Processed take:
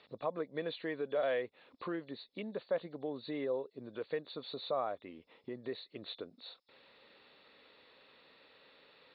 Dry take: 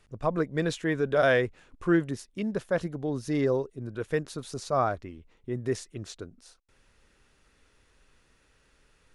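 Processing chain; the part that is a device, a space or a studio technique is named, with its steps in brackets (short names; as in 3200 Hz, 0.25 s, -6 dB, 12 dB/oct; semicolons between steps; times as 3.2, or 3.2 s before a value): hearing aid with frequency lowering (nonlinear frequency compression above 3400 Hz 4:1; compressor 2.5:1, threshold -46 dBFS, peak gain reduction 18 dB; speaker cabinet 310–5400 Hz, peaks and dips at 360 Hz -4 dB, 530 Hz +4 dB, 1500 Hz -7 dB, 4400 Hz -6 dB); gain +6 dB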